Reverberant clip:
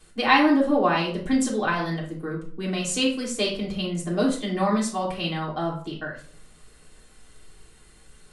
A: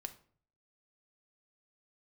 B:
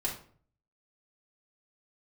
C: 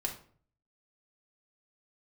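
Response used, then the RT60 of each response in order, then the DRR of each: B; 0.50, 0.50, 0.50 seconds; 7.0, −5.0, −0.5 decibels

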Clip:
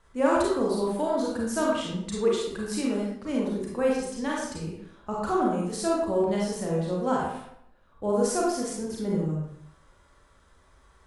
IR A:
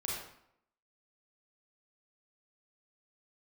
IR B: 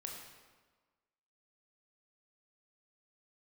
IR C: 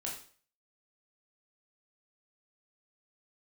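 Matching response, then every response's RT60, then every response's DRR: A; 0.75, 1.4, 0.45 seconds; −4.5, 0.0, −3.5 decibels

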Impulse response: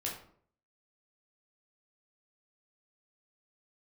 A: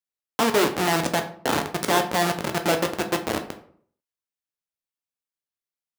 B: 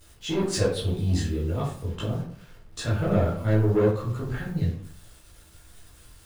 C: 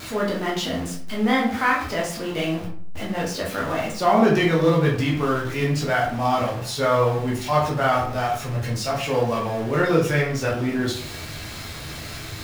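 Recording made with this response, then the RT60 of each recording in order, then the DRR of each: C; 0.60, 0.55, 0.55 seconds; 5.5, −9.5, −3.5 decibels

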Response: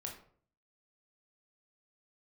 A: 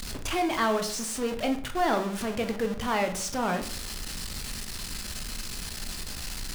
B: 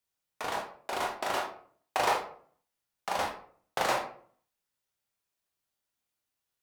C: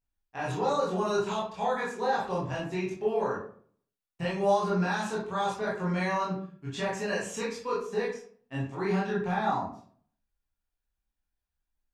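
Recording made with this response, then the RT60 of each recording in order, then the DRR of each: B; 0.55, 0.55, 0.55 seconds; 5.5, 0.0, −6.5 decibels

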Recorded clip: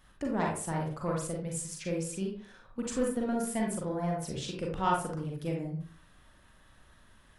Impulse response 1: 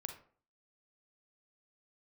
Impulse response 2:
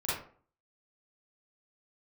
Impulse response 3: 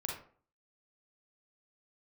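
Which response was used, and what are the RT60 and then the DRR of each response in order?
3; 0.45, 0.45, 0.45 seconds; 5.0, −10.5, −1.5 decibels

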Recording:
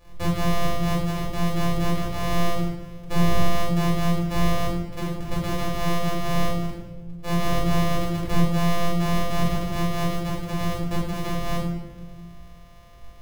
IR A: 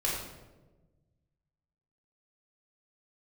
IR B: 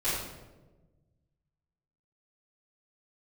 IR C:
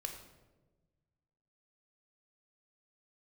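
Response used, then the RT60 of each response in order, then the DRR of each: A; 1.2, 1.2, 1.2 seconds; −6.0, −15.0, 3.0 decibels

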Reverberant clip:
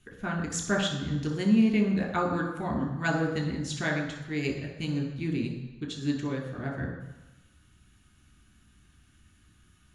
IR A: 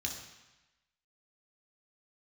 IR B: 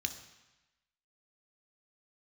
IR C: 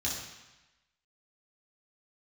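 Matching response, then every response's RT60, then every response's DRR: A; 1.0, 1.0, 1.0 seconds; 0.0, 6.5, −6.0 decibels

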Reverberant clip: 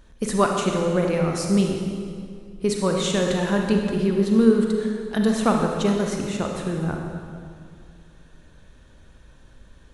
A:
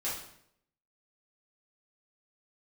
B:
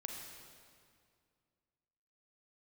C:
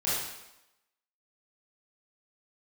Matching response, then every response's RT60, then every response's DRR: B; 0.70, 2.2, 0.90 seconds; −9.5, 1.0, −10.5 decibels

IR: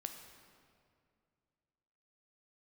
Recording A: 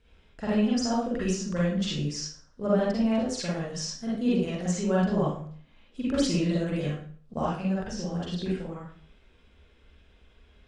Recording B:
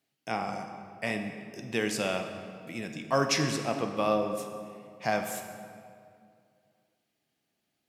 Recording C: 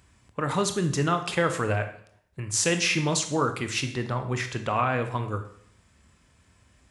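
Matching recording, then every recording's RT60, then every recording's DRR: B; 0.50, 2.3, 0.65 seconds; −8.0, 5.0, 7.0 decibels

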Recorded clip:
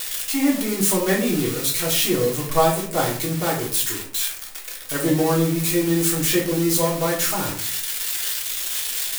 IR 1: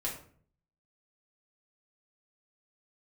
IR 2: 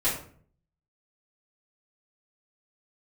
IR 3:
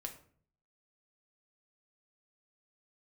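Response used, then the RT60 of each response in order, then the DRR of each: 1; 0.50, 0.50, 0.50 seconds; −4.5, −11.5, 3.0 decibels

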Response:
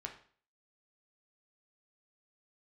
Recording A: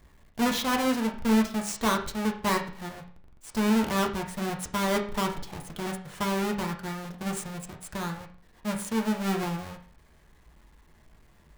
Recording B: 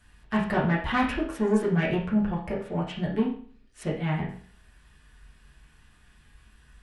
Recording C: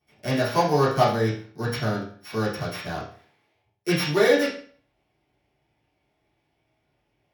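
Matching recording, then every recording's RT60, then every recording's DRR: A; 0.45, 0.45, 0.45 seconds; 1.5, −7.0, −15.5 decibels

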